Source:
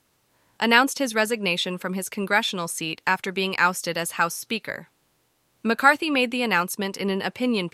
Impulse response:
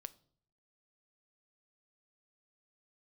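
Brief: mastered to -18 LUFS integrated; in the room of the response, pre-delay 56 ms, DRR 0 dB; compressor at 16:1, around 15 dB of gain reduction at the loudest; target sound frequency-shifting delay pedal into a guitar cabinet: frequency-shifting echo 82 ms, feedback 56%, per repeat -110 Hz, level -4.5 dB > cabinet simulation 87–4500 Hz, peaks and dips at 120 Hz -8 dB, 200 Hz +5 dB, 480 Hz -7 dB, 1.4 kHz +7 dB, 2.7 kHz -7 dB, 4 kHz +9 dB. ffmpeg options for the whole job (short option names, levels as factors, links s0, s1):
-filter_complex "[0:a]acompressor=threshold=0.0562:ratio=16,asplit=2[s0][s1];[1:a]atrim=start_sample=2205,adelay=56[s2];[s1][s2]afir=irnorm=-1:irlink=0,volume=1.78[s3];[s0][s3]amix=inputs=2:normalize=0,asplit=9[s4][s5][s6][s7][s8][s9][s10][s11][s12];[s5]adelay=82,afreqshift=-110,volume=0.596[s13];[s6]adelay=164,afreqshift=-220,volume=0.335[s14];[s7]adelay=246,afreqshift=-330,volume=0.186[s15];[s8]adelay=328,afreqshift=-440,volume=0.105[s16];[s9]adelay=410,afreqshift=-550,volume=0.0589[s17];[s10]adelay=492,afreqshift=-660,volume=0.0327[s18];[s11]adelay=574,afreqshift=-770,volume=0.0184[s19];[s12]adelay=656,afreqshift=-880,volume=0.0102[s20];[s4][s13][s14][s15][s16][s17][s18][s19][s20]amix=inputs=9:normalize=0,highpass=87,equalizer=f=120:t=q:w=4:g=-8,equalizer=f=200:t=q:w=4:g=5,equalizer=f=480:t=q:w=4:g=-7,equalizer=f=1400:t=q:w=4:g=7,equalizer=f=2700:t=q:w=4:g=-7,equalizer=f=4000:t=q:w=4:g=9,lowpass=f=4500:w=0.5412,lowpass=f=4500:w=1.3066,volume=2.24"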